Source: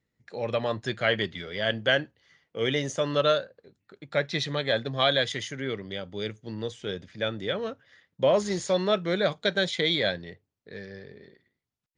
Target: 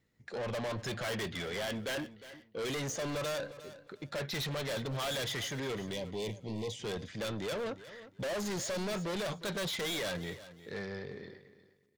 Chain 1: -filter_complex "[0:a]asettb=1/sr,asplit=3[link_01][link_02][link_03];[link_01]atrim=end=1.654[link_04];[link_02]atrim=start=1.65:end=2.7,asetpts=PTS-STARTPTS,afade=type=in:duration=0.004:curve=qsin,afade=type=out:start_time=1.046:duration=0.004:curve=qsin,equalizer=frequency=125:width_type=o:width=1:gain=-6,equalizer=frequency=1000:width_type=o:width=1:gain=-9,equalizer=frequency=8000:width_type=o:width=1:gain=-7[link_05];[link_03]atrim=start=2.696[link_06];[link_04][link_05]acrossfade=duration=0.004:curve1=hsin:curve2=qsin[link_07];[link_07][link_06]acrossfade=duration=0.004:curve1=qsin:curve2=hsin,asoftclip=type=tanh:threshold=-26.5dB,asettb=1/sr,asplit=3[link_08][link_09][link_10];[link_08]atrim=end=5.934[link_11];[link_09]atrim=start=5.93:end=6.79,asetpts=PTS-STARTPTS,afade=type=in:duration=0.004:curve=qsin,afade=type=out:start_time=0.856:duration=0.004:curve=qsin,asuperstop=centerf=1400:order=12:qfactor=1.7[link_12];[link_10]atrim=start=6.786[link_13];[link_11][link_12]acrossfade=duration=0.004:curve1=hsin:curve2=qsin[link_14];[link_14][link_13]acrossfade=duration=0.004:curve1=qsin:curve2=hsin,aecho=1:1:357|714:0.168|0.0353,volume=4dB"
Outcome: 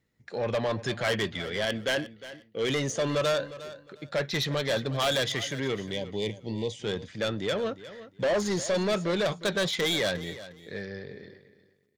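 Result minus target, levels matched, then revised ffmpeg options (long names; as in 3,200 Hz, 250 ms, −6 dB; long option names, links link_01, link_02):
soft clipping: distortion −6 dB
-filter_complex "[0:a]asettb=1/sr,asplit=3[link_01][link_02][link_03];[link_01]atrim=end=1.654[link_04];[link_02]atrim=start=1.65:end=2.7,asetpts=PTS-STARTPTS,afade=type=in:duration=0.004:curve=qsin,afade=type=out:start_time=1.046:duration=0.004:curve=qsin,equalizer=frequency=125:width_type=o:width=1:gain=-6,equalizer=frequency=1000:width_type=o:width=1:gain=-9,equalizer=frequency=8000:width_type=o:width=1:gain=-7[link_05];[link_03]atrim=start=2.696[link_06];[link_04][link_05]acrossfade=duration=0.004:curve1=hsin:curve2=qsin[link_07];[link_07][link_06]acrossfade=duration=0.004:curve1=qsin:curve2=hsin,asoftclip=type=tanh:threshold=-38dB,asettb=1/sr,asplit=3[link_08][link_09][link_10];[link_08]atrim=end=5.934[link_11];[link_09]atrim=start=5.93:end=6.79,asetpts=PTS-STARTPTS,afade=type=in:duration=0.004:curve=qsin,afade=type=out:start_time=0.856:duration=0.004:curve=qsin,asuperstop=centerf=1400:order=12:qfactor=1.7[link_12];[link_10]atrim=start=6.786[link_13];[link_11][link_12]acrossfade=duration=0.004:curve1=hsin:curve2=qsin[link_14];[link_14][link_13]acrossfade=duration=0.004:curve1=qsin:curve2=hsin,aecho=1:1:357|714:0.168|0.0353,volume=4dB"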